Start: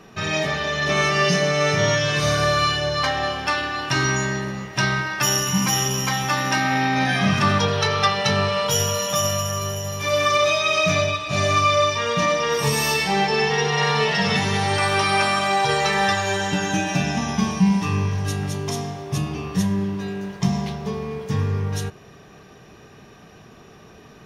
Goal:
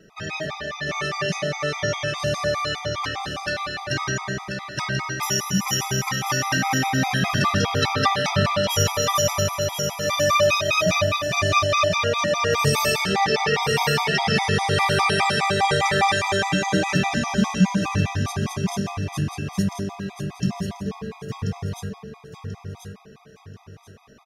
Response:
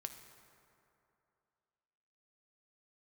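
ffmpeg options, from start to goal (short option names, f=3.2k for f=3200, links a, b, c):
-filter_complex "[0:a]dynaudnorm=f=530:g=21:m=11.5dB,asplit=2[a][b];[b]aecho=0:1:1036|2072|3108|4144:0.501|0.155|0.0482|0.0149[c];[a][c]amix=inputs=2:normalize=0,afftfilt=real='re*gt(sin(2*PI*4.9*pts/sr)*(1-2*mod(floor(b*sr/1024/650),2)),0)':imag='im*gt(sin(2*PI*4.9*pts/sr)*(1-2*mod(floor(b*sr/1024/650),2)),0)':win_size=1024:overlap=0.75,volume=-4dB"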